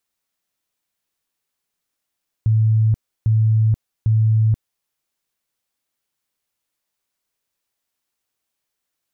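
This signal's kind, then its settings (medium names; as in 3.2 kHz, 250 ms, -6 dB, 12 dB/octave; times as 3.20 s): tone bursts 110 Hz, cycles 53, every 0.80 s, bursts 3, -12 dBFS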